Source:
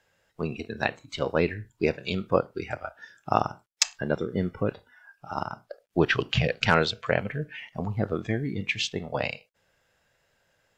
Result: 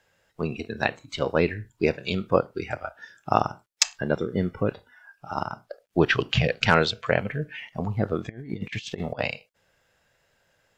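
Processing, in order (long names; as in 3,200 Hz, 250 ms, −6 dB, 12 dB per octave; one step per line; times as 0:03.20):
0:08.29–0:09.19: compressor whose output falls as the input rises −35 dBFS, ratio −0.5
level +2 dB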